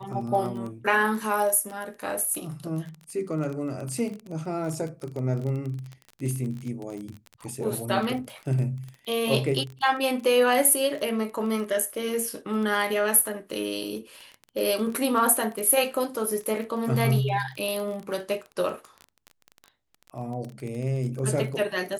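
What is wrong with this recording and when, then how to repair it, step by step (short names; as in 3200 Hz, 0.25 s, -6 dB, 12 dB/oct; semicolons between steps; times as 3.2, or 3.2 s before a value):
crackle 22/s -31 dBFS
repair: de-click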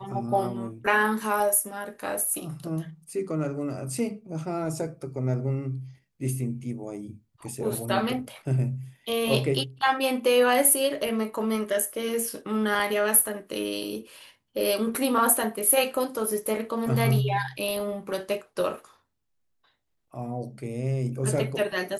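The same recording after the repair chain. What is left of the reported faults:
none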